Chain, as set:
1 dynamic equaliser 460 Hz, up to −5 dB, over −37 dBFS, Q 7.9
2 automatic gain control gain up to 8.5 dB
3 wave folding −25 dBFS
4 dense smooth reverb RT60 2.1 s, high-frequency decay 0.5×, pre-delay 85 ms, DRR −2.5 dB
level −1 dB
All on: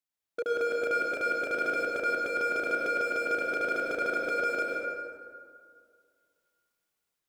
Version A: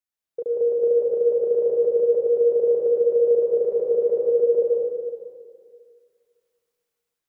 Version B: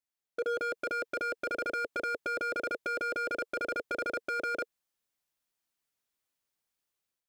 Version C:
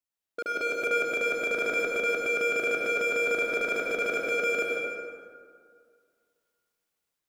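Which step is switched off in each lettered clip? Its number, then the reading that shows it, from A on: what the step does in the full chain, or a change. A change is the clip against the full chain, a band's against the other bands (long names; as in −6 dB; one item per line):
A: 3, change in crest factor −3.0 dB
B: 4, change in momentary loudness spread −6 LU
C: 1, 1 kHz band −6.0 dB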